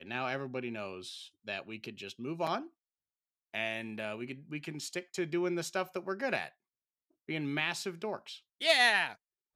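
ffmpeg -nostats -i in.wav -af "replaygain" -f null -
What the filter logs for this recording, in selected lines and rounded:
track_gain = +14.9 dB
track_peak = 0.161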